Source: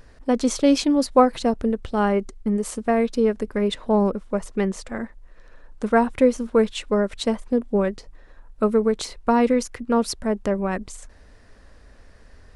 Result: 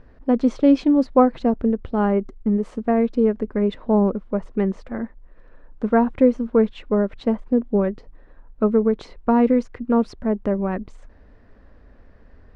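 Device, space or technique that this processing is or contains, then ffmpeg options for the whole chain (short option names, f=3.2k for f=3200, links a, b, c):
phone in a pocket: -filter_complex "[0:a]lowpass=3.9k,equalizer=f=250:t=o:w=1.1:g=3.5,highshelf=f=2.3k:g=-12,asettb=1/sr,asplit=3[a][b][c];[a]atrim=end=6.744[d];[b]atrim=start=6.74:end=7.39,asetpts=PTS-STARTPTS,afade=t=in:d=0.004:c=qsin,afade=t=out:st=0.646:d=0.004:c=qsin,highshelf=f=5.4k:g=-5[e];[c]atrim=start=7.386[f];[d][e]acrossfade=d=0.004:c1=hsin:c2=qsin[g];[g][f]acrossfade=d=0.004:c1=qsin:c2=hsin"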